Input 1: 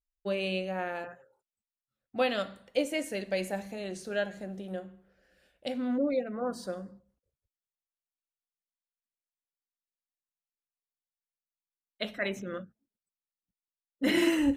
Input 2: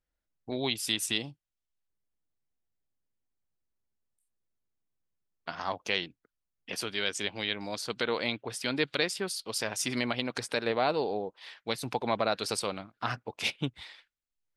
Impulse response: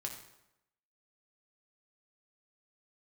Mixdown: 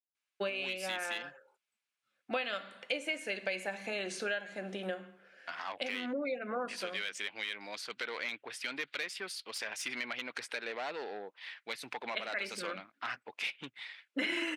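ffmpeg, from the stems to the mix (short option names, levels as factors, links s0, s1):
-filter_complex "[0:a]lowpass=f=11000:w=0.5412,lowpass=f=11000:w=1.3066,bandreject=f=1900:w=9.3,adelay=150,volume=1.33[s0];[1:a]agate=range=0.0224:threshold=0.00141:ratio=3:detection=peak,asoftclip=type=tanh:threshold=0.0531,volume=0.335,asplit=2[s1][s2];[s2]apad=whole_len=648868[s3];[s0][s3]sidechaincompress=threshold=0.00316:ratio=3:attack=30:release=560[s4];[s4][s1]amix=inputs=2:normalize=0,highpass=250,equalizer=f=2100:w=0.78:g=14,acompressor=threshold=0.0224:ratio=6"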